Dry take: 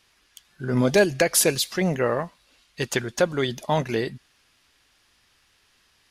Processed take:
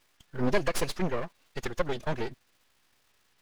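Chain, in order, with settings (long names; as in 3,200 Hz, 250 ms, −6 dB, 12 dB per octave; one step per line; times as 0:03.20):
half-wave rectification
low-pass filter 3,500 Hz 6 dB per octave
surface crackle 190 per second −49 dBFS
phase-vocoder stretch with locked phases 0.56×
level −1 dB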